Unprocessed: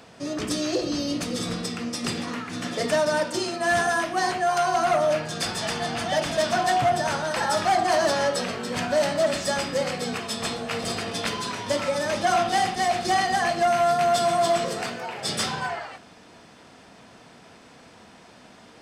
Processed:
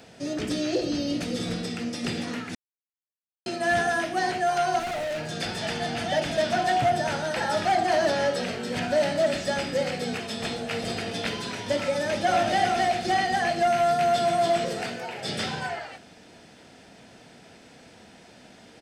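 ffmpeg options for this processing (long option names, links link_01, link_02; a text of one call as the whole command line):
ffmpeg -i in.wav -filter_complex "[0:a]asettb=1/sr,asplit=3[link_01][link_02][link_03];[link_01]atrim=end=4.794[link_04];[link_02]atrim=start=4.79:end=5.29,asetpts=PTS-STARTPTS,afade=type=in:duration=0.004:curve=qsin,afade=type=out:start_time=0.496:duration=0.004:curve=qsin,asoftclip=type=hard:threshold=-27.5dB[link_05];[link_03]atrim=start=5.286[link_06];[link_04][link_05]acrossfade=duration=0.004:curve1=hsin:curve2=qsin[link_07];[link_07][link_06]acrossfade=duration=0.004:curve1=qsin:curve2=hsin,asplit=2[link_08][link_09];[link_09]afade=type=in:start_time=11.9:duration=0.01,afade=type=out:start_time=12.5:duration=0.01,aecho=0:1:380|760|1140:0.630957|0.0946436|0.0141965[link_10];[link_08][link_10]amix=inputs=2:normalize=0,asplit=3[link_11][link_12][link_13];[link_11]atrim=end=2.55,asetpts=PTS-STARTPTS,afade=type=out:start_time=2.546:duration=0.004:curve=hsin[link_14];[link_12]atrim=start=2.55:end=3.46,asetpts=PTS-STARTPTS,volume=0[link_15];[link_13]atrim=start=3.46,asetpts=PTS-STARTPTS,afade=type=in:duration=0.004:curve=hsin[link_16];[link_14][link_15][link_16]concat=n=3:v=0:a=1,acrossover=split=4200[link_17][link_18];[link_18]acompressor=threshold=-41dB:ratio=4:attack=1:release=60[link_19];[link_17][link_19]amix=inputs=2:normalize=0,equalizer=frequency=1100:width_type=o:width=0.43:gain=-10.5" out.wav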